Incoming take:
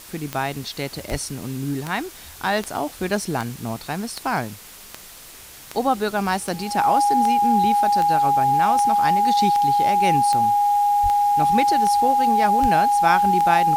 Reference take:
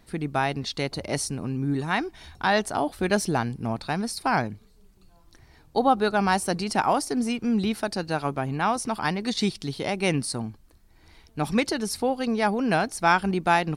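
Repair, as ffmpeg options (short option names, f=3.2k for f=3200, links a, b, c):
-filter_complex "[0:a]adeclick=t=4,bandreject=f=820:w=30,asplit=3[a][b][c];[a]afade=t=out:st=1.1:d=0.02[d];[b]highpass=f=140:w=0.5412,highpass=f=140:w=1.3066,afade=t=in:st=1.1:d=0.02,afade=t=out:st=1.22:d=0.02[e];[c]afade=t=in:st=1.22:d=0.02[f];[d][e][f]amix=inputs=3:normalize=0,asplit=3[g][h][i];[g]afade=t=out:st=11.02:d=0.02[j];[h]highpass=f=140:w=0.5412,highpass=f=140:w=1.3066,afade=t=in:st=11.02:d=0.02,afade=t=out:st=11.14:d=0.02[k];[i]afade=t=in:st=11.14:d=0.02[l];[j][k][l]amix=inputs=3:normalize=0,asplit=3[m][n][o];[m]afade=t=out:st=12.61:d=0.02[p];[n]highpass=f=140:w=0.5412,highpass=f=140:w=1.3066,afade=t=in:st=12.61:d=0.02,afade=t=out:st=12.73:d=0.02[q];[o]afade=t=in:st=12.73:d=0.02[r];[p][q][r]amix=inputs=3:normalize=0,afftdn=nr=12:nf=-42"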